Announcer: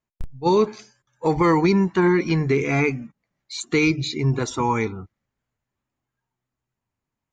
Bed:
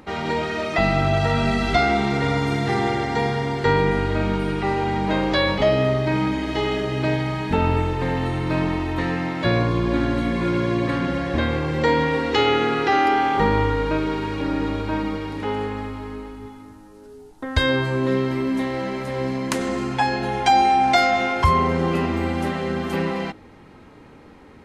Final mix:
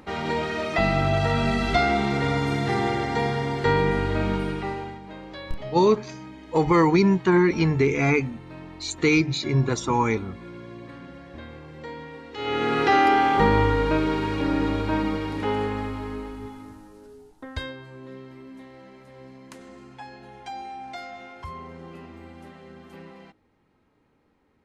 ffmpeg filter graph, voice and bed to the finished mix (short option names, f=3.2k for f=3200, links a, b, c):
-filter_complex "[0:a]adelay=5300,volume=-0.5dB[a];[1:a]volume=16.5dB,afade=t=out:st=4.35:d=0.65:silence=0.149624,afade=t=in:st=12.36:d=0.46:silence=0.112202,afade=t=out:st=16.7:d=1.05:silence=0.0944061[b];[a][b]amix=inputs=2:normalize=0"